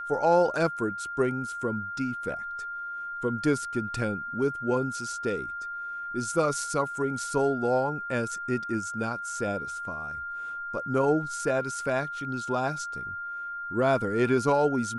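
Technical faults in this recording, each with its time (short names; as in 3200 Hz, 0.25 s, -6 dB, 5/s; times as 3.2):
tone 1400 Hz -33 dBFS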